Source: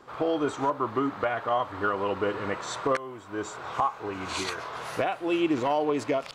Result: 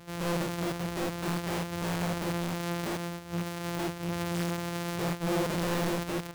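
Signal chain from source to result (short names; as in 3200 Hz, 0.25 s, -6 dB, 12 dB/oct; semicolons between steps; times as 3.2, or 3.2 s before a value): sample sorter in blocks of 256 samples; wrapped overs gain 25 dB; harmonic-percussive split percussive -14 dB; gain +3 dB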